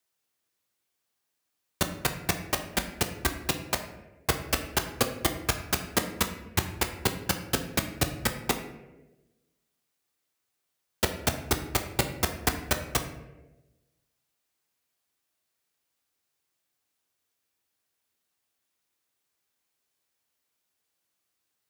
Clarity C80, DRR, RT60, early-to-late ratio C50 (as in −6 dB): 11.5 dB, 5.0 dB, 1.1 s, 9.0 dB